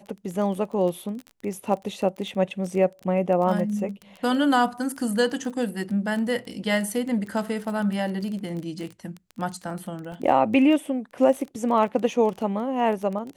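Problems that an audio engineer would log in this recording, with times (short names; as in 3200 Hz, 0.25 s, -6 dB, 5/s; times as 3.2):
crackle 18/s -30 dBFS
10.12 gap 3.2 ms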